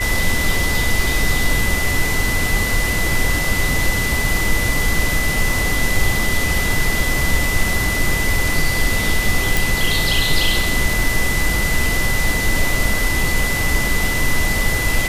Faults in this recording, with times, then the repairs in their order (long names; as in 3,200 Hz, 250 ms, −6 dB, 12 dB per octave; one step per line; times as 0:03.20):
whistle 2,000 Hz −21 dBFS
0:09.57: click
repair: click removal
notch filter 2,000 Hz, Q 30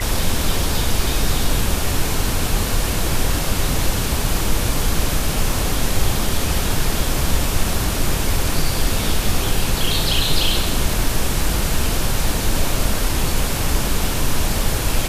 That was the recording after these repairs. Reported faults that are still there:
none of them is left